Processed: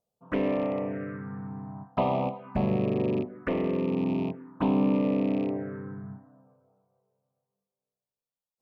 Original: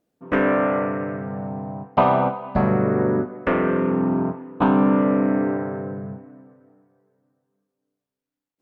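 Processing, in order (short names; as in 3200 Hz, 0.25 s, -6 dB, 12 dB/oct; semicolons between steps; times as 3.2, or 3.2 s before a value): rattling part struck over -25 dBFS, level -26 dBFS; envelope phaser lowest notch 300 Hz, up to 1500 Hz, full sweep at -18.5 dBFS; gain -6 dB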